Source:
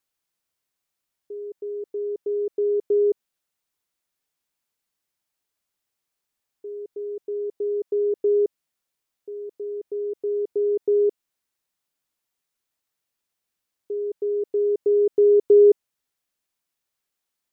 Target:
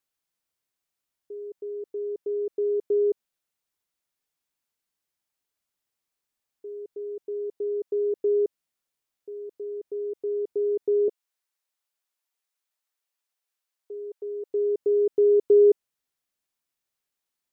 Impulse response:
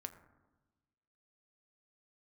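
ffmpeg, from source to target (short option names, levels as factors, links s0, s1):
-filter_complex "[0:a]asettb=1/sr,asplit=3[s0][s1][s2];[s0]atrim=end=11.084[s3];[s1]atrim=start=11.08:end=14.5,asetpts=PTS-STARTPTS,afade=t=in:d=0.004:c=qsin,afade=t=out:st=3.416:d=0.004:c=qsin,highpass=520[s4];[s2]atrim=start=14.496[s5];[s3][s4]acrossfade=d=0.004:c1=hsin:c2=qsin[s6];[s6][s5]acrossfade=d=0.004:c1=qsin:c2=hsin,volume=0.708"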